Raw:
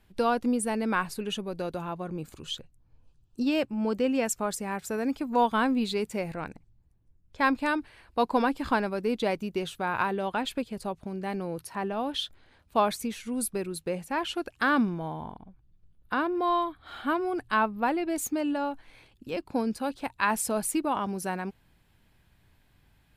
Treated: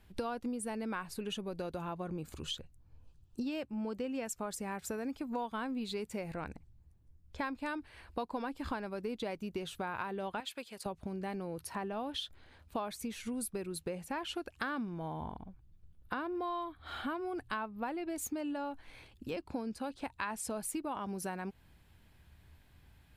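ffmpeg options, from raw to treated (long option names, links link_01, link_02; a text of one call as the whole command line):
ffmpeg -i in.wav -filter_complex "[0:a]asettb=1/sr,asplit=3[link_01][link_02][link_03];[link_01]atrim=end=10.404[link_04];[link_02]atrim=start=10.4:end=10.86,asetpts=PTS-STARTPTS,afade=type=in:duration=0.004:curve=qsin,afade=type=out:start_time=0.456:duration=0.004:curve=qsin,highpass=frequency=1400:poles=1[link_05];[link_03]atrim=start=10.856[link_06];[link_04][link_05]acrossfade=duration=0.004:curve1=hsin:curve2=qsin[link_07];[link_07][link_06]acrossfade=duration=0.004:curve1=qsin:curve2=hsin,asettb=1/sr,asplit=3[link_08][link_09][link_10];[link_08]atrim=end=19.354[link_11];[link_09]atrim=start=19.35:end=20.6,asetpts=PTS-STARTPTS,afade=type=in:duration=0.004:curve=qsin,afade=type=out:start_time=1.246:duration=0.004:curve=qsin,lowpass=11000[link_12];[link_10]atrim=start=20.596[link_13];[link_11][link_12]acrossfade=duration=0.004:curve1=hsin:curve2=qsin[link_14];[link_14][link_13]acrossfade=duration=0.004:curve1=qsin:curve2=hsin,equalizer=frequency=73:width=3.7:gain=9.5,acompressor=threshold=-36dB:ratio=5" out.wav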